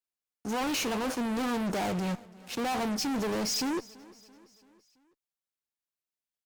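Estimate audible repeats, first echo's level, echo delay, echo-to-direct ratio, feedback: 3, −22.0 dB, 335 ms, −20.5 dB, 54%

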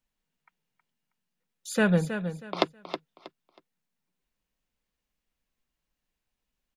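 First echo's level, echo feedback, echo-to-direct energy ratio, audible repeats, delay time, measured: −9.5 dB, 25%, −9.0 dB, 3, 319 ms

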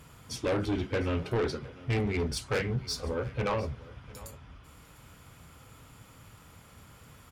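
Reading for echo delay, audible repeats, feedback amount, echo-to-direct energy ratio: 702 ms, 1, repeats not evenly spaced, −20.0 dB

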